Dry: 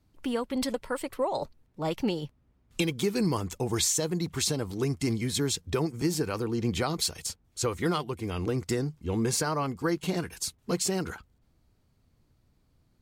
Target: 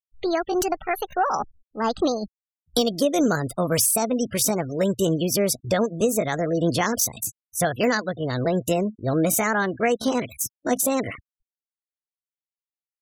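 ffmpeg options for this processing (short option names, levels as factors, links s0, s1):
-af "afftfilt=real='re*gte(hypot(re,im),0.0112)':imag='im*gte(hypot(re,im),0.0112)':win_size=1024:overlap=0.75,asetrate=62367,aresample=44100,atempo=0.707107,volume=2.11"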